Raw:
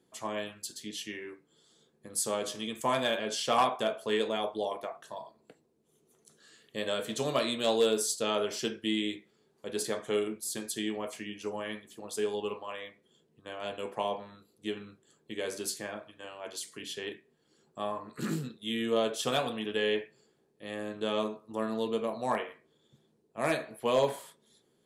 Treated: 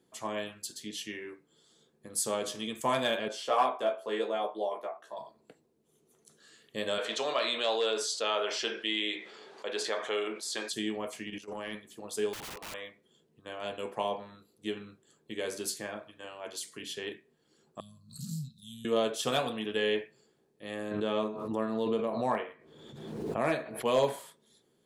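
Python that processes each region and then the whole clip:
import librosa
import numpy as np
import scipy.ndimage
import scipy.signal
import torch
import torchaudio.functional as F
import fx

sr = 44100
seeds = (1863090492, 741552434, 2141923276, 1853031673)

y = fx.chain(x, sr, fx.highpass(hz=380.0, slope=12),
    fx.high_shelf(hz=2100.0, db=-11.5),
    fx.doubler(ms=15.0, db=-2.5), at=(3.28, 5.17))
y = fx.chain(y, sr, fx.bandpass_edges(low_hz=590.0, high_hz=4400.0),
    fx.env_flatten(amount_pct=50), at=(6.98, 10.73))
y = fx.chain(y, sr, fx.highpass(hz=91.0, slope=12),
    fx.transient(attack_db=-10, sustain_db=11),
    fx.level_steps(step_db=13), at=(11.27, 11.75))
y = fx.chain(y, sr, fx.highpass(hz=240.0, slope=12),
    fx.overflow_wrap(gain_db=37.5), at=(12.33, 12.74))
y = fx.chain(y, sr, fx.ellip_bandstop(low_hz=160.0, high_hz=4600.0, order=3, stop_db=40),
    fx.peak_eq(hz=960.0, db=11.5, octaves=1.5),
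    fx.pre_swell(db_per_s=120.0), at=(17.8, 18.85))
y = fx.chain(y, sr, fx.high_shelf(hz=4300.0, db=-11.0),
    fx.pre_swell(db_per_s=39.0), at=(20.91, 23.85))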